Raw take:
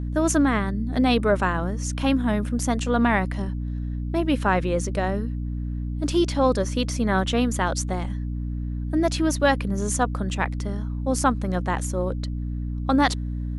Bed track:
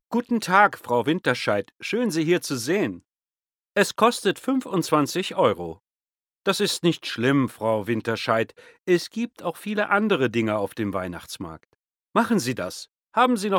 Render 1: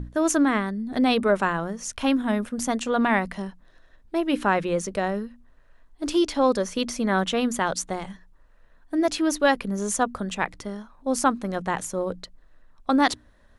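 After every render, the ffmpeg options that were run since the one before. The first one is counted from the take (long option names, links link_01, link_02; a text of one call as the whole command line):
ffmpeg -i in.wav -af "bandreject=frequency=60:width_type=h:width=6,bandreject=frequency=120:width_type=h:width=6,bandreject=frequency=180:width_type=h:width=6,bandreject=frequency=240:width_type=h:width=6,bandreject=frequency=300:width_type=h:width=6" out.wav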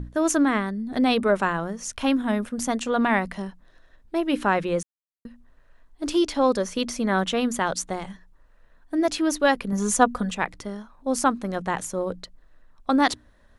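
ffmpeg -i in.wav -filter_complex "[0:a]asettb=1/sr,asplit=3[link_01][link_02][link_03];[link_01]atrim=end=9.724[link_04];[link_02]atrim=start=9.72:end=10.31,asetpts=PTS-STARTPTS,afade=type=in:duration=0.004:curve=qsin,afade=type=out:start_time=0.586:duration=0.004:curve=qsin,aecho=1:1:4.1:0.95,atrim=end_sample=26019[link_05];[link_03]atrim=start=10.306[link_06];[link_04][link_05]acrossfade=duration=0.004:curve1=hsin:curve2=qsin[link_07];[link_07][link_06]acrossfade=duration=0.004:curve1=qsin:curve2=hsin,asplit=3[link_08][link_09][link_10];[link_08]atrim=end=4.83,asetpts=PTS-STARTPTS,afade=type=out:start_time=4.826:duration=0.004:curve=hsin[link_11];[link_09]atrim=start=4.83:end=5.25,asetpts=PTS-STARTPTS,volume=0[link_12];[link_10]atrim=start=5.25,asetpts=PTS-STARTPTS,afade=type=in:duration=0.004:curve=hsin[link_13];[link_11][link_12][link_13]concat=n=3:v=0:a=1" out.wav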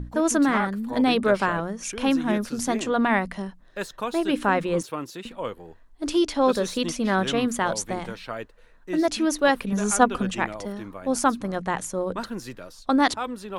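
ffmpeg -i in.wav -i bed.wav -filter_complex "[1:a]volume=-12dB[link_01];[0:a][link_01]amix=inputs=2:normalize=0" out.wav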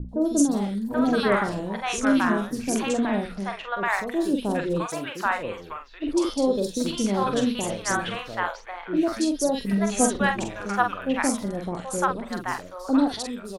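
ffmpeg -i in.wav -filter_complex "[0:a]asplit=2[link_01][link_02];[link_02]adelay=45,volume=-6.5dB[link_03];[link_01][link_03]amix=inputs=2:normalize=0,acrossover=split=690|3400[link_04][link_05][link_06];[link_06]adelay=90[link_07];[link_05]adelay=780[link_08];[link_04][link_08][link_07]amix=inputs=3:normalize=0" out.wav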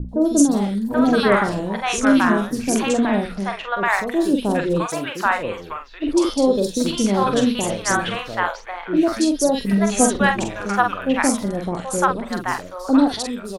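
ffmpeg -i in.wav -af "volume=5.5dB,alimiter=limit=-3dB:level=0:latency=1" out.wav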